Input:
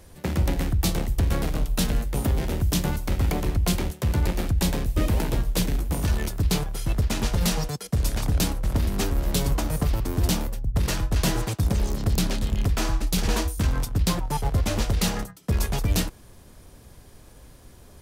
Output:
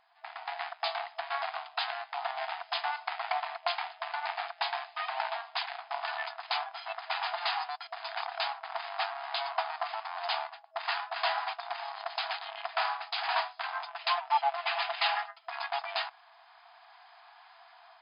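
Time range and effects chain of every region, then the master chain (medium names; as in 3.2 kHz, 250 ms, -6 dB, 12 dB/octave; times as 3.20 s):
13.88–15.39 s: peaking EQ 2.7 kHz +5 dB 0.73 oct + comb 5.9 ms, depth 61%
whole clip: treble shelf 2.3 kHz -11 dB; level rider gain up to 13 dB; FFT band-pass 650–5100 Hz; trim -5 dB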